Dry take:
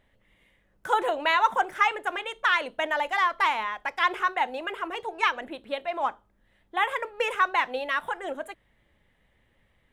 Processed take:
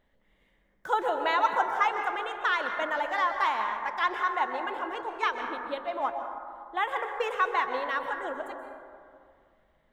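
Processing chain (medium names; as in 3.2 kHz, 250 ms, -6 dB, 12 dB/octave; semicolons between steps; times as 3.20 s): fifteen-band graphic EQ 100 Hz -9 dB, 2.5 kHz -6 dB, 10 kHz -10 dB; plate-style reverb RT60 2.2 s, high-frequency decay 0.3×, pre-delay 115 ms, DRR 5 dB; trim -2.5 dB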